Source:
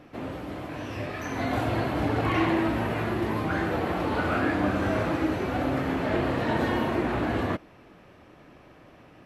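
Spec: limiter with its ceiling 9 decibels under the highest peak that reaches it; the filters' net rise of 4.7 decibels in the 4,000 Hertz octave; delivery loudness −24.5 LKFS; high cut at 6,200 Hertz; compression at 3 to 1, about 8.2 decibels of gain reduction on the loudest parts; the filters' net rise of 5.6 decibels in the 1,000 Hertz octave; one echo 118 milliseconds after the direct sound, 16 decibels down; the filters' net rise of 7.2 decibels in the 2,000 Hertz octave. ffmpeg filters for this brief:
ffmpeg -i in.wav -af "lowpass=6200,equalizer=frequency=1000:width_type=o:gain=5.5,equalizer=frequency=2000:width_type=o:gain=6.5,equalizer=frequency=4000:width_type=o:gain=3.5,acompressor=threshold=-29dB:ratio=3,alimiter=level_in=2dB:limit=-24dB:level=0:latency=1,volume=-2dB,aecho=1:1:118:0.158,volume=10dB" out.wav

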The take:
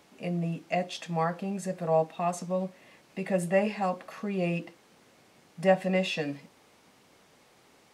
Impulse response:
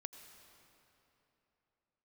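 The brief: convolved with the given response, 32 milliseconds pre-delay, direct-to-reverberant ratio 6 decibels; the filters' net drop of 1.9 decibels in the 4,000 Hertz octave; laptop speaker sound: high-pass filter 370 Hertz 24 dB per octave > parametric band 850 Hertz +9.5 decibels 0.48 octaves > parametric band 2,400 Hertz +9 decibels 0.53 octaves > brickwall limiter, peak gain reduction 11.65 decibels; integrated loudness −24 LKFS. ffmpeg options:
-filter_complex "[0:a]equalizer=frequency=4000:width_type=o:gain=-7.5,asplit=2[link_01][link_02];[1:a]atrim=start_sample=2205,adelay=32[link_03];[link_02][link_03]afir=irnorm=-1:irlink=0,volume=-2dB[link_04];[link_01][link_04]amix=inputs=2:normalize=0,highpass=frequency=370:width=0.5412,highpass=frequency=370:width=1.3066,equalizer=frequency=850:width_type=o:width=0.48:gain=9.5,equalizer=frequency=2400:width_type=o:width=0.53:gain=9,volume=8dB,alimiter=limit=-12dB:level=0:latency=1"

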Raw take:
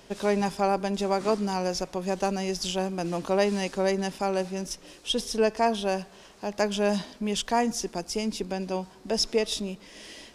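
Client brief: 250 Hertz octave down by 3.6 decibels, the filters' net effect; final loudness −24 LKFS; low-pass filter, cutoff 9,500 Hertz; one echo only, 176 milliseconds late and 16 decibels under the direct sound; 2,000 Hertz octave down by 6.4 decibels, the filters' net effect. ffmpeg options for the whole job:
ffmpeg -i in.wav -af "lowpass=9500,equalizer=frequency=250:width_type=o:gain=-5,equalizer=frequency=2000:width_type=o:gain=-8.5,aecho=1:1:176:0.158,volume=6dB" out.wav

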